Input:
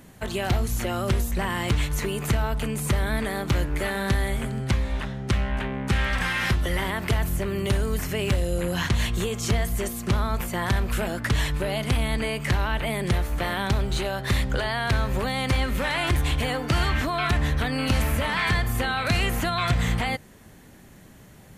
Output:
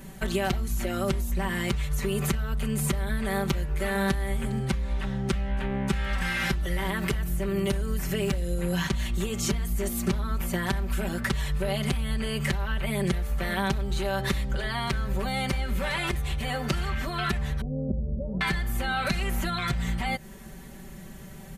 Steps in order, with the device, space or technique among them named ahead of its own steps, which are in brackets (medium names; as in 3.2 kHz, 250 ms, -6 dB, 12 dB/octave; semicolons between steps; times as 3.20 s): 17.61–18.41 s: elliptic low-pass 560 Hz, stop band 80 dB; ASMR close-microphone chain (bass shelf 130 Hz +7.5 dB; compression 6:1, threshold -27 dBFS, peak gain reduction 13.5 dB; treble shelf 9.2 kHz +3.5 dB); comb 5.2 ms, depth 98%